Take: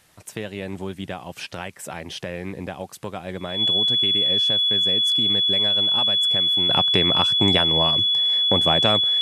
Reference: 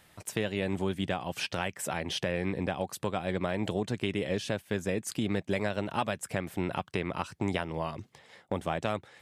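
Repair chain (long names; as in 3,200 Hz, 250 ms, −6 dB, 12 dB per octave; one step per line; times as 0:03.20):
notch filter 3,400 Hz, Q 30
downward expander −32 dBFS, range −21 dB
level 0 dB, from 0:06.69 −10 dB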